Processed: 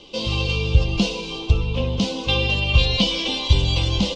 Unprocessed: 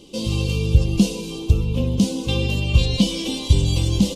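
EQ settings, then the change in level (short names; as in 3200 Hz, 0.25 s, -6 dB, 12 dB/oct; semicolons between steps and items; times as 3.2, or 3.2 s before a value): air absorption 80 m; three-band isolator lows -17 dB, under 580 Hz, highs -19 dB, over 5800 Hz; low shelf 120 Hz +10.5 dB; +8.5 dB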